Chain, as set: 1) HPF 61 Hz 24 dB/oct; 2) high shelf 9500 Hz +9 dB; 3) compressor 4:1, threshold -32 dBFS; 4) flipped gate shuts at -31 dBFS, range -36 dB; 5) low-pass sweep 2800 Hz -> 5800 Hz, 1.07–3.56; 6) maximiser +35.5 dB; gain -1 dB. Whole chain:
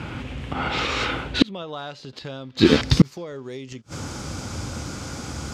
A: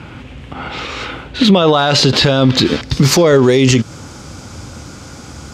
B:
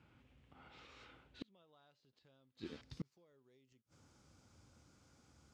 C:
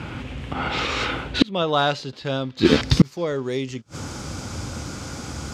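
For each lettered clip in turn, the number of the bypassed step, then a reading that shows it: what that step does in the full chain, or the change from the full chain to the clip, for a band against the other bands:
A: 4, crest factor change -10.5 dB; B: 6, crest factor change +3.5 dB; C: 3, mean gain reduction 7.0 dB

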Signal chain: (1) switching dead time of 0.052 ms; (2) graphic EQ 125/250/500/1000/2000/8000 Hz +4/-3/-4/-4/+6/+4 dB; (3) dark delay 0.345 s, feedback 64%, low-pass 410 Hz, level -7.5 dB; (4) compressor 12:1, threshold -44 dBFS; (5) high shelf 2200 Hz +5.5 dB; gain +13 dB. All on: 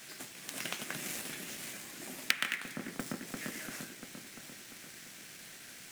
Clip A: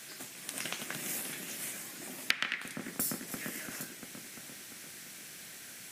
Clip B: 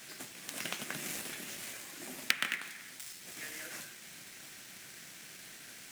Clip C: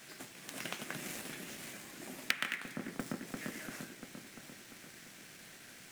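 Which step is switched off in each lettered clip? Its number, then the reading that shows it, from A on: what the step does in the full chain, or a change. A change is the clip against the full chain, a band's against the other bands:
1, distortion -14 dB; 3, 250 Hz band -5.5 dB; 5, 8 kHz band -4.5 dB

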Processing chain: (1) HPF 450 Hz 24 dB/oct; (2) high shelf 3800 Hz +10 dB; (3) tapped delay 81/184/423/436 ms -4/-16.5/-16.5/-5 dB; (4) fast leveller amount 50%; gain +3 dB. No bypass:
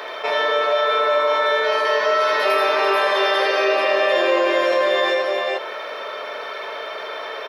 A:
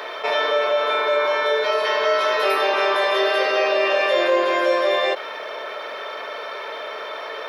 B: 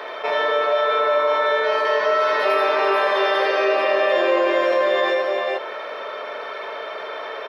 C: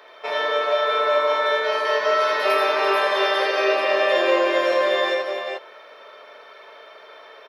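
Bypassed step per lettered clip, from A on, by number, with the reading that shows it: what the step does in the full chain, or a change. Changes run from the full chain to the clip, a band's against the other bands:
3, loudness change -2.0 LU; 2, 4 kHz band -4.0 dB; 4, momentary loudness spread change -6 LU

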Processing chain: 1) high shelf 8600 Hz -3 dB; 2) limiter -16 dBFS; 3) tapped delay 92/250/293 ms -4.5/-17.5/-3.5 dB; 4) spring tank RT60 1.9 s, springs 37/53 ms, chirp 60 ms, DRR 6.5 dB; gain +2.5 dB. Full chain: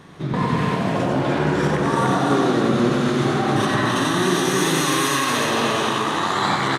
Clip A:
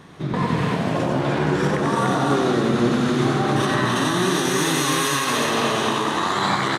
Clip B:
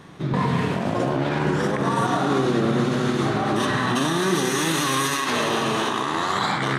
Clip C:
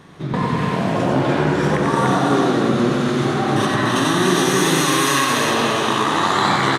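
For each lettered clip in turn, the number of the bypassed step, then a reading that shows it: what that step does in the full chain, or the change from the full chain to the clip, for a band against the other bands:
4, echo-to-direct 1.0 dB to -1.0 dB; 3, echo-to-direct 1.0 dB to -6.5 dB; 2, mean gain reduction 2.0 dB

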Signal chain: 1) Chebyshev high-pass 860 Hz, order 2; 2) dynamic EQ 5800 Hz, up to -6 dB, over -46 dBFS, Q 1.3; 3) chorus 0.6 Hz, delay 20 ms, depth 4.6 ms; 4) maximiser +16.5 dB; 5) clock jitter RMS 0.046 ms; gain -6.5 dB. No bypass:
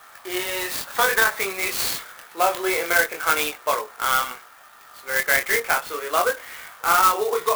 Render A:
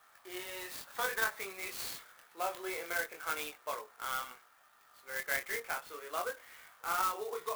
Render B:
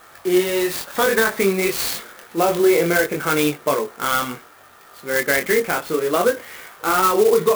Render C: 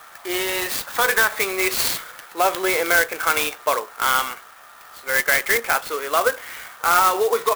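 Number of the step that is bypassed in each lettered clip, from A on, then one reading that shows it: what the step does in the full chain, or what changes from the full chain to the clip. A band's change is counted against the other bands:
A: 4, crest factor change +4.5 dB; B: 1, 125 Hz band +14.5 dB; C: 3, crest factor change -1.5 dB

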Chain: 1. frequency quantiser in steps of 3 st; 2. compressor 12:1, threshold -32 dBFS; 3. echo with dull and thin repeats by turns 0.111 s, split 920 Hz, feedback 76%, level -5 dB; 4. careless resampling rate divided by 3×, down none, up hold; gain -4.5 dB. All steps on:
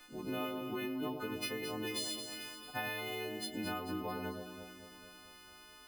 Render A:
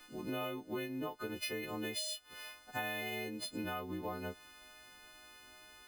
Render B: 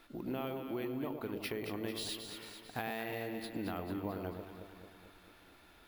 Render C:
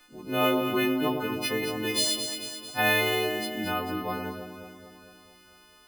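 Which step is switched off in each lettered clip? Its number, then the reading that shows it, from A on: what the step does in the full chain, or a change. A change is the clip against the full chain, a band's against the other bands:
3, momentary loudness spread change +2 LU; 1, 125 Hz band +5.0 dB; 2, mean gain reduction 6.0 dB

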